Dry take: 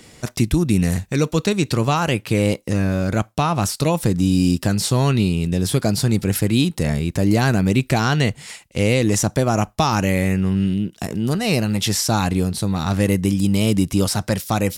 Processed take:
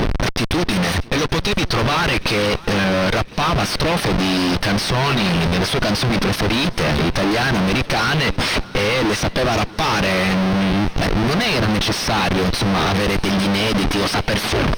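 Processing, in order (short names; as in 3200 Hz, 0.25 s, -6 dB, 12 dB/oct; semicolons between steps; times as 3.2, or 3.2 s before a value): tape stop at the end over 0.39 s; reverb removal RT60 0.64 s; tilt +3.5 dB/oct; de-hum 72.57 Hz, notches 4; sample leveller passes 3; compressor 12:1, threshold -11 dBFS, peak gain reduction 8 dB; Schmitt trigger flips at -25.5 dBFS; polynomial smoothing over 15 samples; swung echo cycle 1.064 s, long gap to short 1.5:1, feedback 60%, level -22 dB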